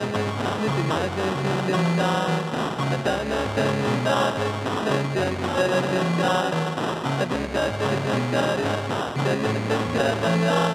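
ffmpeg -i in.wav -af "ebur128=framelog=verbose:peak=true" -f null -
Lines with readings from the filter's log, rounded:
Integrated loudness:
  I:         -23.6 LUFS
  Threshold: -33.6 LUFS
Loudness range:
  LRA:         1.1 LU
  Threshold: -43.6 LUFS
  LRA low:   -24.2 LUFS
  LRA high:  -23.1 LUFS
True peak:
  Peak:       -8.1 dBFS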